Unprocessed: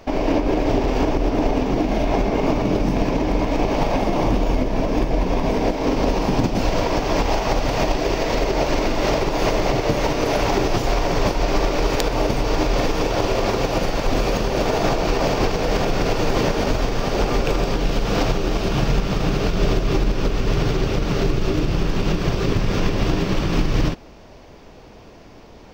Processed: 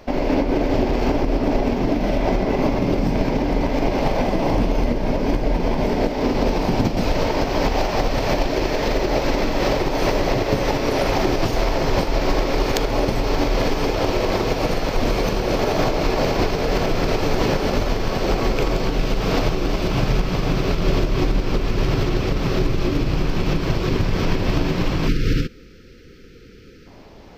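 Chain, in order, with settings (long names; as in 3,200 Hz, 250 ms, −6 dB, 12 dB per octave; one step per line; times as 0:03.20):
gain on a spectral selection 0:23.57–0:25.26, 580–1,300 Hz −30 dB
speed change −6%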